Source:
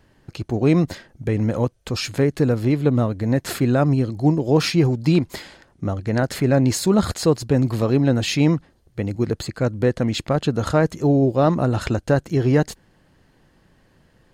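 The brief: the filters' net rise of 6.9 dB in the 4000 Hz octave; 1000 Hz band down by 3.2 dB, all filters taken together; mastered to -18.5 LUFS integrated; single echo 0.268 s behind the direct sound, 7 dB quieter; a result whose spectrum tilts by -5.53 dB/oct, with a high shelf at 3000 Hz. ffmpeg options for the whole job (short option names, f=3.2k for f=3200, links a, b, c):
-af "equalizer=f=1k:t=o:g=-5.5,highshelf=f=3k:g=4,equalizer=f=4k:t=o:g=5.5,aecho=1:1:268:0.447,volume=1dB"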